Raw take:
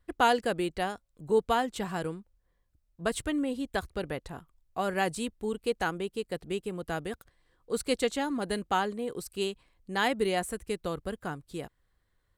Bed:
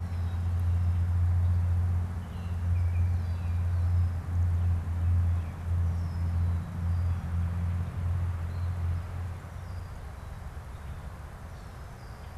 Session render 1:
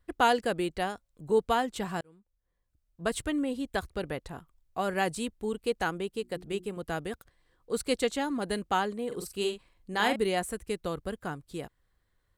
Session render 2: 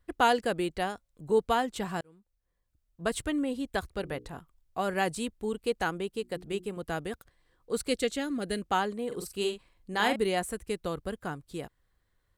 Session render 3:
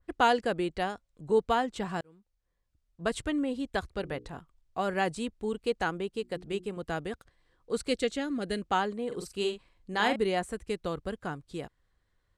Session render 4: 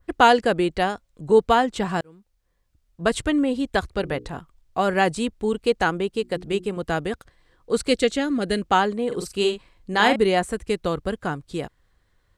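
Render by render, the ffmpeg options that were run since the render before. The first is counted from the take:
-filter_complex "[0:a]asettb=1/sr,asplit=3[s0][s1][s2];[s0]atrim=end=6.204[s3];[s1]atrim=start=6.2:end=6.77,asetpts=PTS-STARTPTS,afade=t=in:d=0.004:c=qsin,afade=t=out:st=0.566:d=0.004:c=qsin,bandreject=f=60:t=h:w=6,bandreject=f=120:t=h:w=6,bandreject=f=180:t=h:w=6,bandreject=f=240:t=h:w=6,bandreject=f=300:t=h:w=6,bandreject=f=360:t=h:w=6[s4];[s2]atrim=start=6.766[s5];[s3][s4]acrossfade=d=0.004:c1=hsin:c2=qsin[s6];[s6][s5]acrossfade=d=0.004:c1=qsin:c2=hsin,asettb=1/sr,asplit=3[s7][s8][s9];[s7]atrim=end=9.074[s10];[s8]atrim=start=9.07:end=10.16,asetpts=PTS-STARTPTS,afade=t=in:d=0.004:c=qsin,afade=t=out:st=1.086:d=0.004:c=qsin,asplit=2[s11][s12];[s12]adelay=44,volume=0.501[s13];[s11][s13]amix=inputs=2:normalize=0,atrim=end_sample=48069[s14];[s9]atrim=start=10.156[s15];[s10][s14]acrossfade=d=0.004:c1=hsin:c2=qsin[s16];[s16][s15]acrossfade=d=0.004:c1=qsin:c2=hsin,asplit=2[s17][s18];[s17]atrim=end=2.01,asetpts=PTS-STARTPTS,afade=t=out:st=2.006:d=0.004:c=hsin[s19];[s18]atrim=start=2.01,asetpts=PTS-STARTPTS,afade=t=in:d=1.1[s20];[s19][s20]concat=n=2:v=0:a=1"
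-filter_complex "[0:a]asettb=1/sr,asplit=3[s0][s1][s2];[s0]atrim=end=3.964[s3];[s1]atrim=start=3.96:end=4.36,asetpts=PTS-STARTPTS,afade=t=in:d=0.004:c=qsin,afade=t=out:st=0.396:d=0.004:c=qsin,bandreject=f=60:t=h:w=6,bandreject=f=120:t=h:w=6,bandreject=f=180:t=h:w=6,bandreject=f=240:t=h:w=6,bandreject=f=300:t=h:w=6,bandreject=f=360:t=h:w=6,bandreject=f=420:t=h:w=6,bandreject=f=480:t=h:w=6[s4];[s2]atrim=start=4.356[s5];[s3][s4]acrossfade=d=0.004:c1=hsin:c2=qsin[s6];[s6][s5]acrossfade=d=0.004:c1=qsin:c2=hsin,asettb=1/sr,asplit=3[s7][s8][s9];[s7]atrim=end=7.894[s10];[s8]atrim=start=7.89:end=8.62,asetpts=PTS-STARTPTS,afade=t=in:d=0.004:c=qsin,afade=t=out:st=0.726:d=0.004:c=qsin,equalizer=f=940:t=o:w=0.49:g=-14.5[s11];[s9]atrim=start=8.616[s12];[s10][s11]acrossfade=d=0.004:c1=hsin:c2=qsin[s13];[s13][s12]acrossfade=d=0.004:c1=qsin:c2=hsin"
-af "lowpass=7700,adynamicequalizer=threshold=0.01:dfrequency=2100:dqfactor=0.7:tfrequency=2100:tqfactor=0.7:attack=5:release=100:ratio=0.375:range=2:mode=cutabove:tftype=highshelf"
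-af "volume=2.82"

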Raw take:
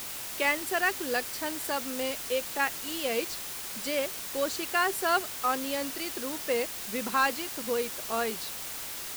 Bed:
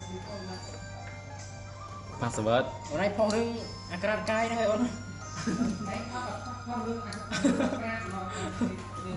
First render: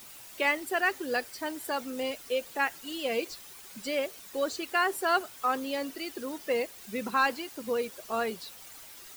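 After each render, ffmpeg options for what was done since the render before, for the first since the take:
-af "afftdn=nr=12:nf=-38"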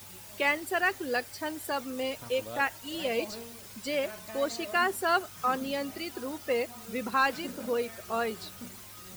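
-filter_complex "[1:a]volume=0.168[s0];[0:a][s0]amix=inputs=2:normalize=0"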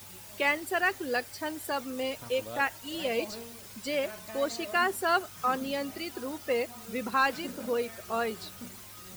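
-af anull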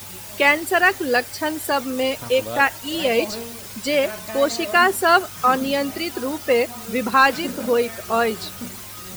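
-af "volume=3.55"

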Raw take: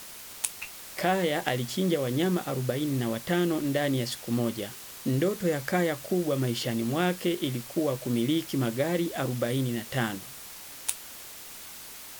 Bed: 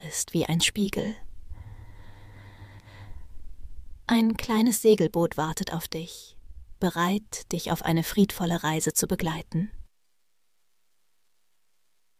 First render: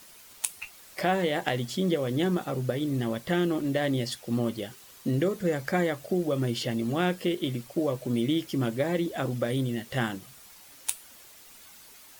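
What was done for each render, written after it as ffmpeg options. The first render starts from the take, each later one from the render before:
-af "afftdn=nr=9:nf=-44"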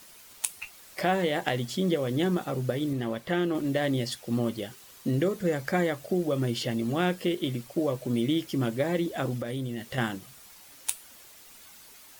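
-filter_complex "[0:a]asettb=1/sr,asplit=3[s0][s1][s2];[s0]atrim=end=2.934[s3];[s1]atrim=start=2.93:end=3.55,asetpts=PTS-STARTPTS,afade=t=in:d=0.004:c=qsin,afade=t=out:st=0.616:d=0.004:c=qsin,bass=f=250:g=-4,treble=f=4000:g=-6[s4];[s2]atrim=start=3.546[s5];[s3][s4]acrossfade=d=0.004:c1=hsin:c2=qsin[s6];[s6][s5]acrossfade=d=0.004:c1=qsin:c2=hsin,asettb=1/sr,asplit=3[s7][s8][s9];[s7]atrim=end=9.364[s10];[s8]atrim=start=9.36:end=9.98,asetpts=PTS-STARTPTS,afade=t=in:d=0.004:c=qsin,afade=t=out:st=0.616:d=0.004:c=qsin,acompressor=threshold=0.0355:ratio=6:attack=3.2:release=140:knee=1:detection=peak[s11];[s9]atrim=start=9.976[s12];[s10][s11]acrossfade=d=0.004:c1=hsin:c2=qsin[s13];[s13][s12]acrossfade=d=0.004:c1=qsin:c2=hsin"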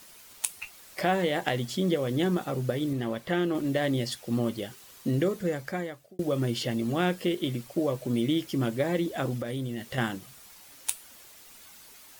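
-filter_complex "[0:a]asplit=2[s0][s1];[s0]atrim=end=6.19,asetpts=PTS-STARTPTS,afade=t=out:st=5.29:d=0.9[s2];[s1]atrim=start=6.19,asetpts=PTS-STARTPTS,afade=t=in:d=0.004:c=hsin[s3];[s2][s3]concat=n=2:v=0:a=1"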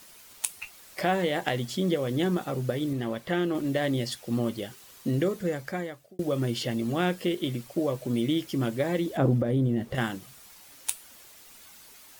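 -filter_complex "[0:a]asettb=1/sr,asplit=3[s0][s1][s2];[s0]atrim=end=9.174[s3];[s1]atrim=start=9.17:end=9.95,asetpts=PTS-STARTPTS,afade=t=in:d=0.004:c=qsin,afade=t=out:st=0.776:d=0.004:c=qsin,tiltshelf=f=1300:g=9[s4];[s2]atrim=start=9.946[s5];[s3][s4]acrossfade=d=0.004:c1=hsin:c2=qsin[s6];[s6][s5]acrossfade=d=0.004:c1=qsin:c2=hsin"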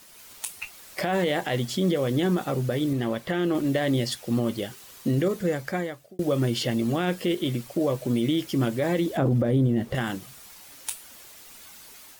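-af "dynaudnorm=f=110:g=3:m=1.58,alimiter=limit=0.168:level=0:latency=1:release=21"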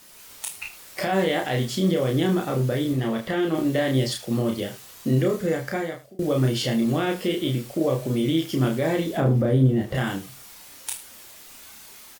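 -filter_complex "[0:a]asplit=2[s0][s1];[s1]adelay=31,volume=0.708[s2];[s0][s2]amix=inputs=2:normalize=0,aecho=1:1:75:0.178"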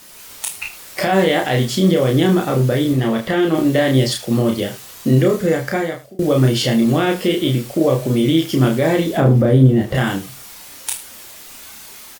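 -af "volume=2.37"

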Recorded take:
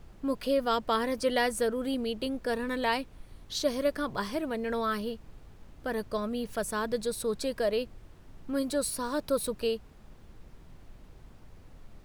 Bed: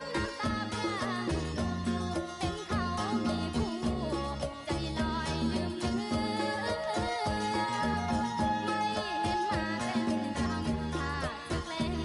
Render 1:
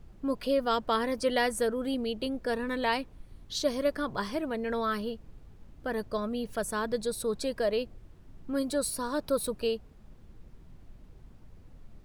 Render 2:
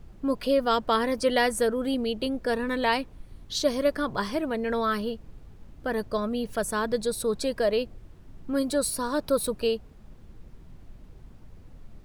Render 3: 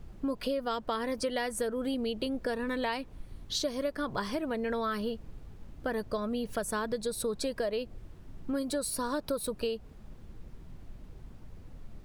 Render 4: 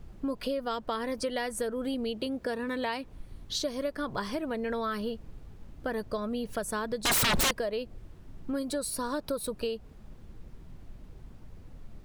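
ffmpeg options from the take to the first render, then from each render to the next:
-af "afftdn=nr=6:nf=-53"
-af "volume=1.58"
-af "acompressor=threshold=0.0355:ratio=6"
-filter_complex "[0:a]asettb=1/sr,asplit=3[s0][s1][s2];[s0]atrim=end=2.144[s3];[s1]atrim=start=2.14:end=3.04,asetpts=PTS-STARTPTS,afade=t=in:d=0.004:c=qsin,afade=t=out:st=0.896:d=0.004:c=qsin,highpass=65[s4];[s2]atrim=start=3.036[s5];[s3][s4]acrossfade=d=0.004:c1=hsin:c2=qsin[s6];[s6][s5]acrossfade=d=0.004:c1=qsin:c2=hsin,asettb=1/sr,asplit=3[s7][s8][s9];[s7]atrim=end=7.054[s10];[s8]atrim=start=7.05:end=7.51,asetpts=PTS-STARTPTS,afade=t=in:d=0.004:c=qsin,afade=t=out:st=0.456:d=0.004:c=qsin,aeval=exprs='0.0794*sin(PI/2*8.91*val(0)/0.0794)':c=same[s11];[s9]atrim=start=7.506[s12];[s10][s11]acrossfade=d=0.004:c1=hsin:c2=qsin[s13];[s13][s12]acrossfade=d=0.004:c1=qsin:c2=hsin"

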